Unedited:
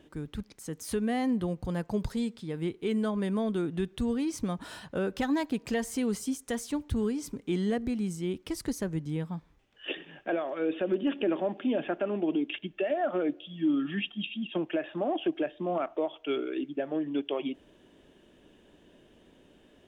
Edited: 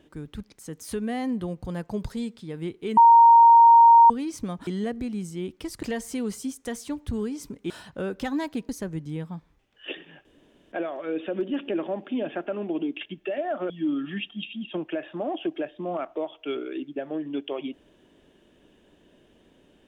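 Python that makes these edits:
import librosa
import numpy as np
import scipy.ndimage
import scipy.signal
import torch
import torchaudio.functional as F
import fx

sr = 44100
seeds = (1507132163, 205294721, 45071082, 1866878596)

y = fx.edit(x, sr, fx.bleep(start_s=2.97, length_s=1.13, hz=929.0, db=-9.5),
    fx.swap(start_s=4.67, length_s=0.99, other_s=7.53, other_length_s=1.16),
    fx.insert_room_tone(at_s=10.25, length_s=0.47),
    fx.cut(start_s=13.23, length_s=0.28), tone=tone)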